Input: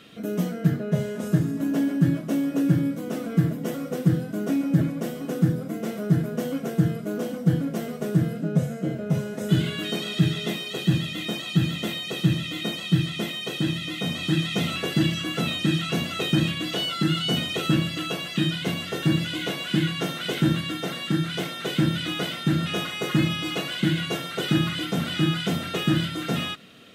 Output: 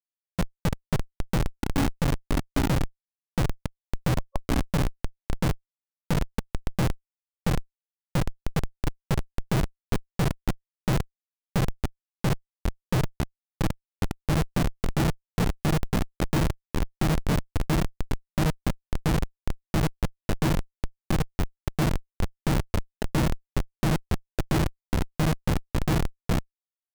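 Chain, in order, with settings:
comparator with hysteresis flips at −18.5 dBFS
gain on a spectral selection 0:04.18–0:04.42, 550–1,100 Hz +11 dB
level +3.5 dB

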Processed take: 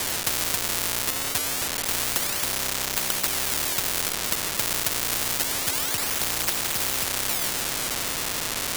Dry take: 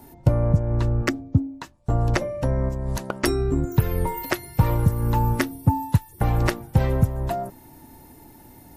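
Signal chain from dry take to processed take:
converter with a step at zero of −22 dBFS
sample-and-hold swept by an LFO 32×, swing 160% 0.27 Hz
echo through a band-pass that steps 310 ms, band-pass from 380 Hz, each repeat 0.7 octaves, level −10 dB
every bin compressed towards the loudest bin 10 to 1
level +4.5 dB

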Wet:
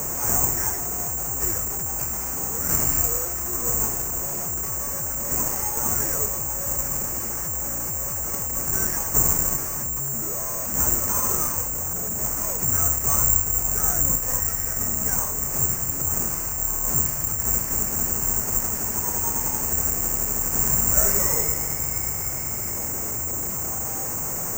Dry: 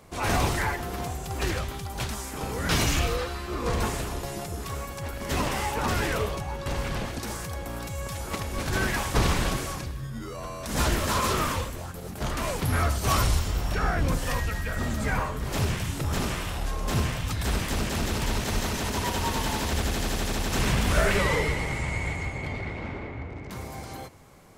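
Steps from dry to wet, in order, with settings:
linear delta modulator 16 kbit/s, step −24 dBFS
low-pass filter 1,500 Hz 12 dB per octave
bad sample-rate conversion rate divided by 6×, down none, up zero stuff
level −4.5 dB

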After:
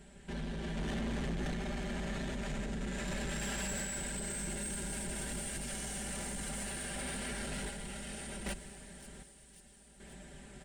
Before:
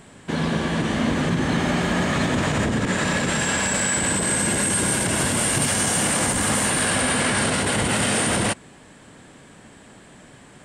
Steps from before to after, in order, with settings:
sub-octave generator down 2 octaves, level +2 dB
parametric band 1,100 Hz −15 dB 0.22 octaves
comb filter 5.1 ms, depth 73%
brickwall limiter −16 dBFS, peak gain reduction 10 dB
sample-and-hold tremolo 1.3 Hz, depth 75%
soft clipping −25 dBFS, distortion −12 dB
delay with a high-pass on its return 536 ms, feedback 67%, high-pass 4,900 Hz, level −10.5 dB
on a send at −15 dB: convolution reverb RT60 3.1 s, pre-delay 65 ms
on the sum: level −7.5 dB

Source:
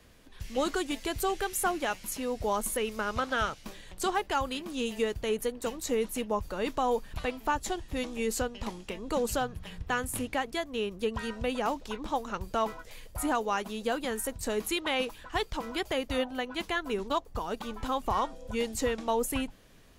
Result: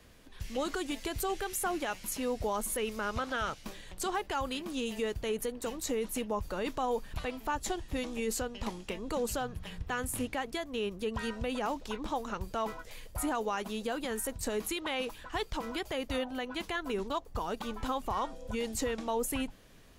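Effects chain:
brickwall limiter −24 dBFS, peak gain reduction 6.5 dB

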